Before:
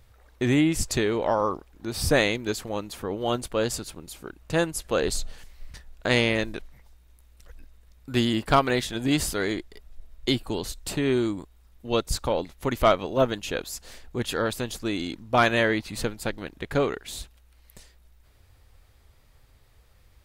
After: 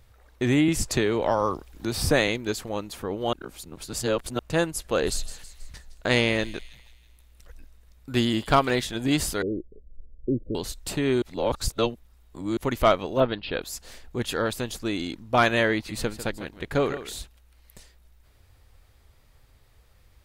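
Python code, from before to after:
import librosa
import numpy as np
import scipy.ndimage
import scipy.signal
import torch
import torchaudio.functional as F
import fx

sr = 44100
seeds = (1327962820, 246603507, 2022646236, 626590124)

y = fx.band_squash(x, sr, depth_pct=40, at=(0.68, 2.28))
y = fx.echo_wet_highpass(y, sr, ms=161, feedback_pct=49, hz=3700.0, wet_db=-11, at=(4.95, 8.75), fade=0.02)
y = fx.steep_lowpass(y, sr, hz=580.0, slope=96, at=(9.42, 10.55))
y = fx.steep_lowpass(y, sr, hz=4800.0, slope=96, at=(13.2, 13.62))
y = fx.echo_single(y, sr, ms=148, db=-12.5, at=(15.74, 17.19))
y = fx.edit(y, sr, fx.reverse_span(start_s=3.33, length_s=1.06),
    fx.reverse_span(start_s=11.22, length_s=1.35), tone=tone)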